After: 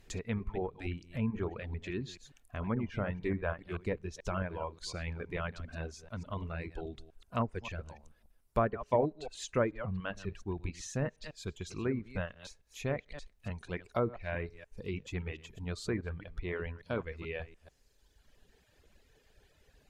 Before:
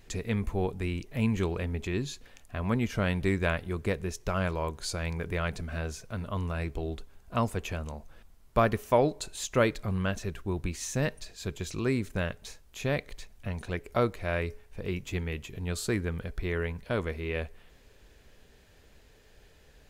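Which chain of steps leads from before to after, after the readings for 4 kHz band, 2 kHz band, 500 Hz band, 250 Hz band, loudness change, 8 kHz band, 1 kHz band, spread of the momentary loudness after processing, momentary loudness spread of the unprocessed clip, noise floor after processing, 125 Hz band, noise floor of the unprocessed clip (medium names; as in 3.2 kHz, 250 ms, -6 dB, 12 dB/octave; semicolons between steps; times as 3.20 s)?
-7.5 dB, -7.0 dB, -5.0 dB, -6.0 dB, -6.0 dB, -9.0 dB, -5.5 dB, 12 LU, 11 LU, -69 dBFS, -6.5 dB, -58 dBFS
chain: chunks repeated in reverse 145 ms, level -8 dB; low-pass that closes with the level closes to 1.5 kHz, closed at -22.5 dBFS; reverb removal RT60 1.6 s; trim -4.5 dB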